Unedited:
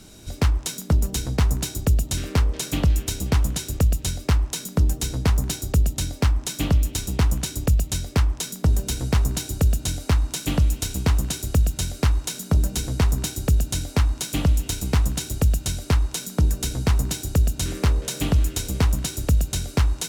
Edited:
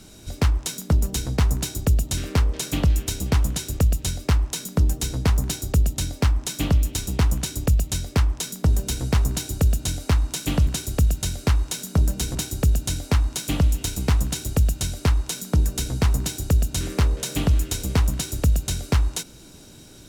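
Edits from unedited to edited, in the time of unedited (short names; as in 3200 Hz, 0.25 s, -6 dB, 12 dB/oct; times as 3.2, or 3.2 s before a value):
10.67–11.23 cut
12.91–13.2 cut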